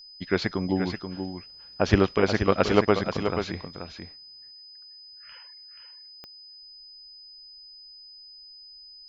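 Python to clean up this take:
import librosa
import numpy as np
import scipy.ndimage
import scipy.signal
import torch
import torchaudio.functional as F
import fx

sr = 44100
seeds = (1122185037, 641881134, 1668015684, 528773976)

y = fx.fix_declick_ar(x, sr, threshold=10.0)
y = fx.notch(y, sr, hz=5000.0, q=30.0)
y = fx.fix_echo_inverse(y, sr, delay_ms=481, level_db=-7.5)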